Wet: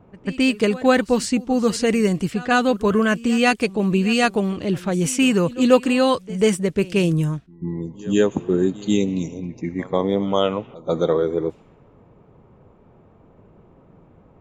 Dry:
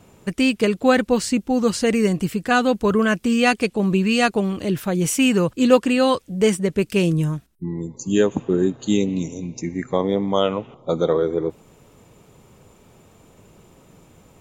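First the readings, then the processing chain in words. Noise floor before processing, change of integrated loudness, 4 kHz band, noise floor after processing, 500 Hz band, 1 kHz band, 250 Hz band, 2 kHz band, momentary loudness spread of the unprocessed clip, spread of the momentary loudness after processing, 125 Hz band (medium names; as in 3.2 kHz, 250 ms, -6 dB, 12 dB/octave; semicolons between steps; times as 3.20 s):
-53 dBFS, 0.0 dB, 0.0 dB, -52 dBFS, 0.0 dB, 0.0 dB, 0.0 dB, 0.0 dB, 10 LU, 10 LU, 0.0 dB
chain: level-controlled noise filter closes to 1.2 kHz, open at -16 dBFS; pre-echo 142 ms -19.5 dB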